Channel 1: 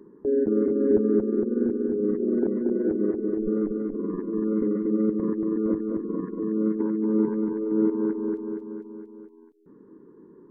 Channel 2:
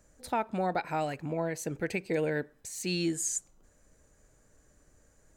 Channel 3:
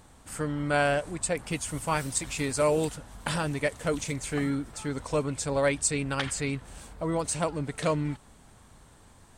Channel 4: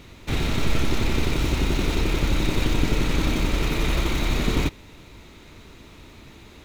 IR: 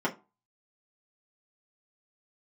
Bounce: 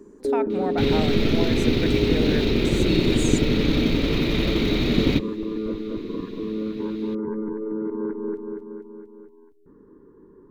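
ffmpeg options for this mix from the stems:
-filter_complex "[0:a]asubboost=boost=8.5:cutoff=75,alimiter=limit=0.0891:level=0:latency=1:release=34,volume=1.12,asplit=2[s0][s1];[s1]volume=0.0794[s2];[1:a]highshelf=f=8800:g=-8.5,volume=1.12[s3];[3:a]equalizer=f=125:t=o:w=1:g=6,equalizer=f=250:t=o:w=1:g=10,equalizer=f=500:t=o:w=1:g=7,equalizer=f=1000:t=o:w=1:g=-4,equalizer=f=2000:t=o:w=1:g=3,equalizer=f=4000:t=o:w=1:g=11,equalizer=f=8000:t=o:w=1:g=-11,adelay=500,volume=0.562[s4];[4:a]atrim=start_sample=2205[s5];[s2][s5]afir=irnorm=-1:irlink=0[s6];[s0][s3][s4][s6]amix=inputs=4:normalize=0"

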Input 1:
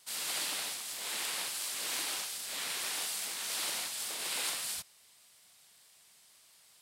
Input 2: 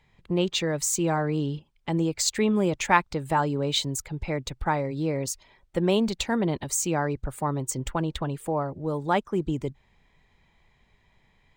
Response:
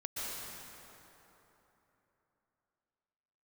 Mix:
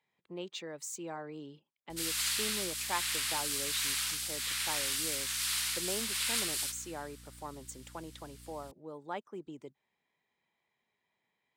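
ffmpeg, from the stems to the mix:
-filter_complex "[0:a]highpass=f=1200:w=0.5412,highpass=f=1200:w=1.3066,aeval=exprs='val(0)+0.00158*(sin(2*PI*60*n/s)+sin(2*PI*2*60*n/s)/2+sin(2*PI*3*60*n/s)/3+sin(2*PI*4*60*n/s)/4+sin(2*PI*5*60*n/s)/5)':c=same,adelay=1900,volume=1.26,asplit=2[s0][s1];[s1]volume=0.119[s2];[1:a]highpass=260,volume=0.178[s3];[2:a]atrim=start_sample=2205[s4];[s2][s4]afir=irnorm=-1:irlink=0[s5];[s0][s3][s5]amix=inputs=3:normalize=0"

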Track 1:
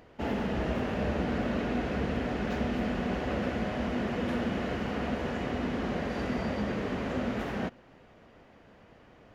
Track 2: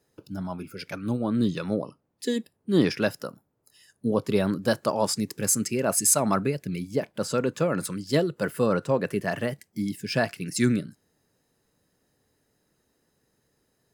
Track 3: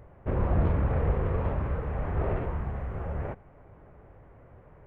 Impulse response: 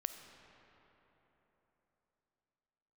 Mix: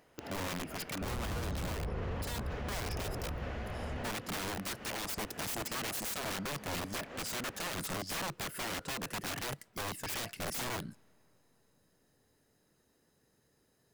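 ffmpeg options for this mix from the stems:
-filter_complex "[0:a]lowshelf=f=390:g=-10.5,volume=0.447[s0];[1:a]acompressor=threshold=0.0447:ratio=12,aeval=exprs='(mod(35.5*val(0)+1,2)-1)/35.5':c=same,volume=0.794,asplit=3[s1][s2][s3];[s2]volume=0.1[s4];[2:a]adelay=750,volume=0.398[s5];[s3]apad=whole_len=412037[s6];[s0][s6]sidechaincompress=threshold=0.00447:ratio=8:attack=12:release=187[s7];[3:a]atrim=start_sample=2205[s8];[s4][s8]afir=irnorm=-1:irlink=0[s9];[s7][s1][s5][s9]amix=inputs=4:normalize=0,alimiter=level_in=1.88:limit=0.0631:level=0:latency=1:release=26,volume=0.531"

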